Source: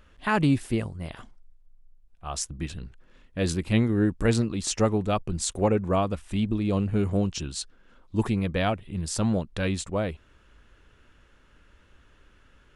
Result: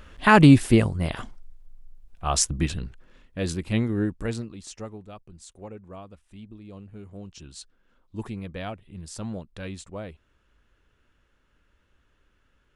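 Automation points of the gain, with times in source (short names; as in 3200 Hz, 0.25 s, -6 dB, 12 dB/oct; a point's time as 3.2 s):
2.53 s +9 dB
3.42 s -2 dB
4 s -2 dB
4.53 s -11 dB
5.14 s -18 dB
7.11 s -18 dB
7.55 s -9 dB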